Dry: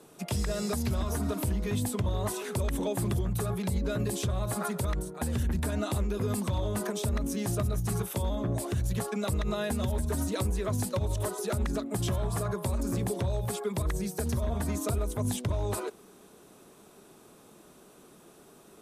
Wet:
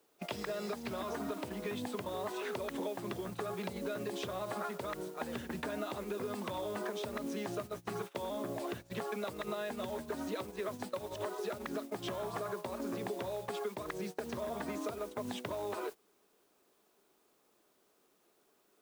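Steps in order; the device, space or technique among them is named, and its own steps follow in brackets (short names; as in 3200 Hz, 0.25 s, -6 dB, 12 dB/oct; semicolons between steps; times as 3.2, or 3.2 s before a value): baby monitor (BPF 320–3500 Hz; compressor 8:1, threshold -38 dBFS, peak gain reduction 10.5 dB; white noise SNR 17 dB; gate -44 dBFS, range -19 dB); gain +3 dB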